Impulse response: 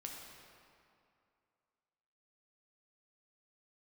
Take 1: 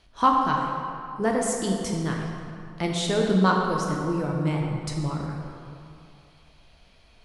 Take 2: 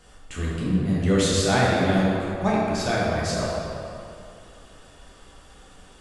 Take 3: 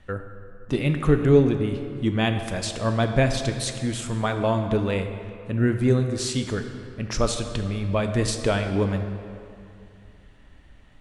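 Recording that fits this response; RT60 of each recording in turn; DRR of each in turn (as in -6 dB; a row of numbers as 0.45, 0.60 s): 1; 2.5, 2.5, 2.5 s; -1.0, -6.5, 6.0 dB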